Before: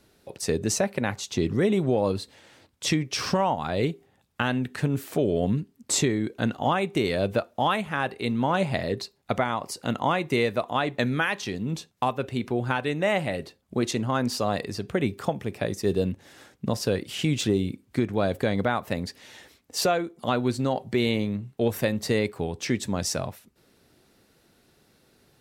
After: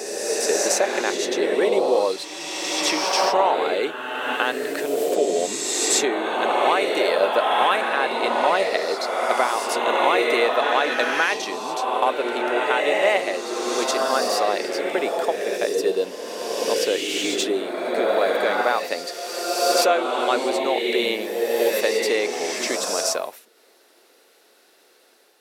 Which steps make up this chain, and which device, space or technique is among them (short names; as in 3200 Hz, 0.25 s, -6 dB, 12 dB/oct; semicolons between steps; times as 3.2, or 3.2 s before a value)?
ghost voice (reverse; reverb RT60 2.5 s, pre-delay 63 ms, DRR -0.5 dB; reverse; HPF 380 Hz 24 dB/oct); gain +4.5 dB